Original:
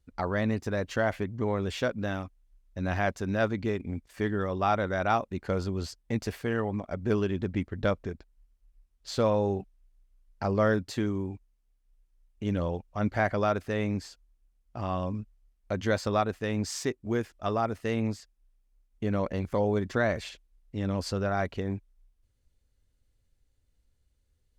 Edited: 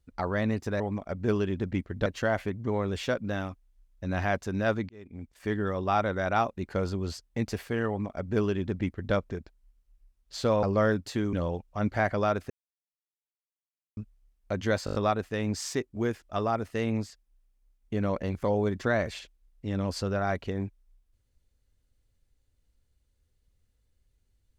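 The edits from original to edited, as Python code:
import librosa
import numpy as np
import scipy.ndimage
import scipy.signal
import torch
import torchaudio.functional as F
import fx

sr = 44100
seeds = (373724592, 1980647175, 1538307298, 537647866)

y = fx.edit(x, sr, fx.fade_in_span(start_s=3.63, length_s=0.66),
    fx.duplicate(start_s=6.62, length_s=1.26, to_s=0.8),
    fx.cut(start_s=9.37, length_s=1.08),
    fx.cut(start_s=11.15, length_s=1.38),
    fx.silence(start_s=13.7, length_s=1.47),
    fx.stutter(start_s=16.05, slice_s=0.02, count=6), tone=tone)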